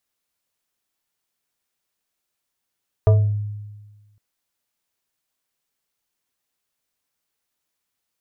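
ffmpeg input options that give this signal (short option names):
-f lavfi -i "aevalsrc='0.376*pow(10,-3*t/1.39)*sin(2*PI*104*t+0.74*pow(10,-3*t/0.46)*sin(2*PI*5.21*104*t))':d=1.11:s=44100"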